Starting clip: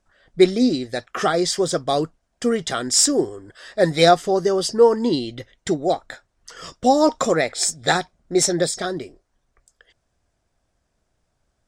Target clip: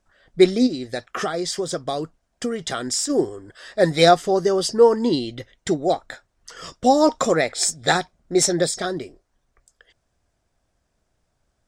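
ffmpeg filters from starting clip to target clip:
-filter_complex "[0:a]asplit=3[s0][s1][s2];[s0]afade=t=out:st=0.66:d=0.02[s3];[s1]acompressor=threshold=0.0794:ratio=6,afade=t=in:st=0.66:d=0.02,afade=t=out:st=3.09:d=0.02[s4];[s2]afade=t=in:st=3.09:d=0.02[s5];[s3][s4][s5]amix=inputs=3:normalize=0"

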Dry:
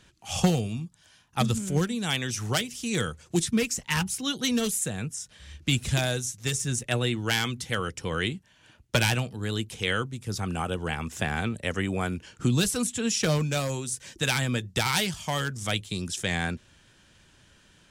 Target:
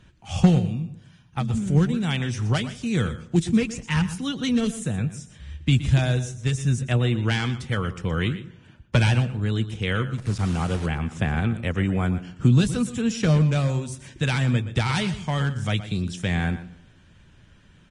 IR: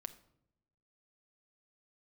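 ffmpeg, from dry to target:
-filter_complex "[0:a]bass=f=250:g=9,treble=f=4000:g=-10,asplit=3[s0][s1][s2];[s0]afade=t=out:st=0.58:d=0.02[s3];[s1]acompressor=threshold=0.0708:ratio=6,afade=t=in:st=0.58:d=0.02,afade=t=out:st=1.53:d=0.02[s4];[s2]afade=t=in:st=1.53:d=0.02[s5];[s3][s4][s5]amix=inputs=3:normalize=0,asettb=1/sr,asplit=3[s6][s7][s8];[s6]atrim=end=10.184[s9];[s7]atrim=start=10.18:end=10.86,asetpts=PTS-STARTPTS,afade=t=in:d=0.004:c=qsin,afade=t=out:st=0.676:d=0.004:c=qsin,acrusher=bits=7:dc=4:mix=0:aa=0.000001[s10];[s8]atrim=start=10.856[s11];[s9][s10]acrossfade=d=0.004:c1=hsin:c2=qsin[s12];[s12][s11]acrossfade=d=0.004:c1=qsin:c2=hsin,asplit=2[s13][s14];[s14]adelay=149,lowpass=f=2300:p=1,volume=0.0708,asplit=2[s15][s16];[s16]adelay=149,lowpass=f=2300:p=1,volume=0.42,asplit=2[s17][s18];[s18]adelay=149,lowpass=f=2300:p=1,volume=0.42[s19];[s13][s15][s17][s19]amix=inputs=4:normalize=0,asplit=2[s20][s21];[1:a]atrim=start_sample=2205,adelay=120[s22];[s21][s22]afir=irnorm=-1:irlink=0,volume=0.335[s23];[s20][s23]amix=inputs=2:normalize=0" -ar 22050 -c:a libvorbis -b:a 32k

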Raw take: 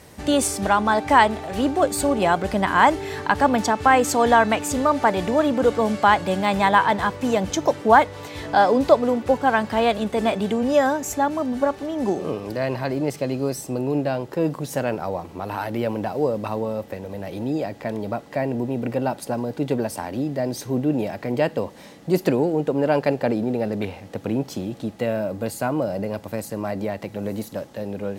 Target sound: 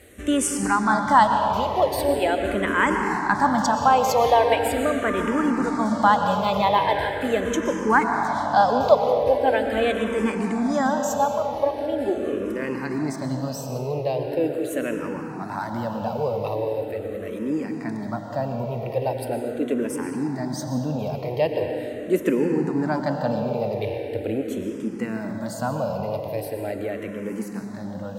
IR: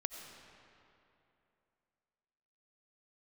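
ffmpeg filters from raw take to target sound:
-filter_complex "[1:a]atrim=start_sample=2205,asetrate=32634,aresample=44100[s0];[0:a][s0]afir=irnorm=-1:irlink=0,asplit=2[s1][s2];[s2]afreqshift=-0.41[s3];[s1][s3]amix=inputs=2:normalize=1"

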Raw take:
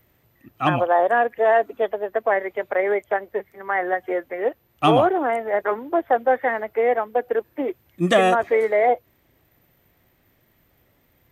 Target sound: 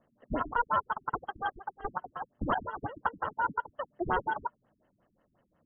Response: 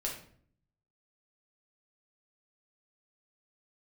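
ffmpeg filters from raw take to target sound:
-af "acrusher=samples=37:mix=1:aa=0.000001,asetrate=88200,aresample=44100,afftfilt=real='re*lt(b*sr/1024,290*pow(3300/290,0.5+0.5*sin(2*PI*5.6*pts/sr)))':imag='im*lt(b*sr/1024,290*pow(3300/290,0.5+0.5*sin(2*PI*5.6*pts/sr)))':win_size=1024:overlap=0.75,volume=0.355"

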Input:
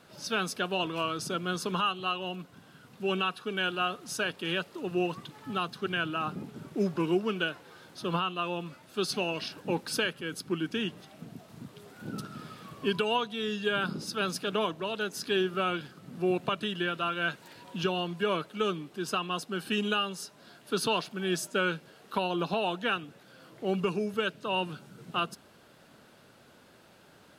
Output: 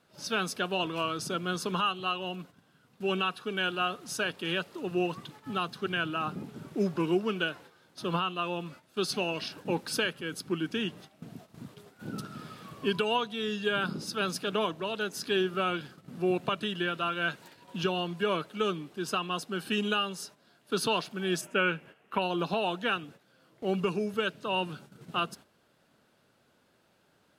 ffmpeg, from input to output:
-filter_complex "[0:a]asettb=1/sr,asplit=3[s0][s1][s2];[s0]atrim=end=21.414[s3];[s1]atrim=start=21.41:end=22.22,asetpts=PTS-STARTPTS,afade=t=in:d=0.004:c=qsin,afade=t=out:st=0.806:d=0.004:c=qsin,highshelf=f=3300:t=q:w=3:g=-7.5[s4];[s2]atrim=start=22.216[s5];[s3][s4]acrossfade=d=0.004:c1=hsin:c2=qsin[s6];[s6][s5]acrossfade=d=0.004:c1=qsin:c2=hsin,agate=range=0.316:threshold=0.00355:ratio=16:detection=peak"

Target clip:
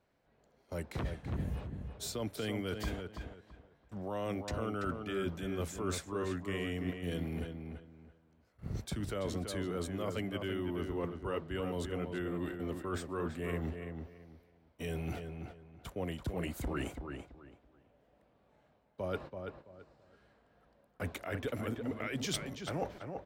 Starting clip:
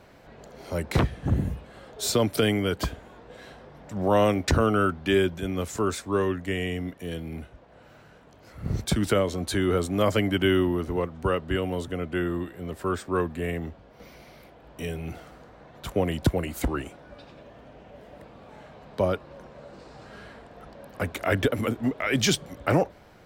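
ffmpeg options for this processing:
-filter_complex "[0:a]agate=range=0.0708:threshold=0.0112:ratio=16:detection=peak,areverse,acompressor=threshold=0.02:ratio=12,areverse,asplit=2[s0][s1];[s1]adelay=333,lowpass=f=2900:p=1,volume=0.501,asplit=2[s2][s3];[s3]adelay=333,lowpass=f=2900:p=1,volume=0.25,asplit=2[s4][s5];[s5]adelay=333,lowpass=f=2900:p=1,volume=0.25[s6];[s0][s2][s4][s6]amix=inputs=4:normalize=0"

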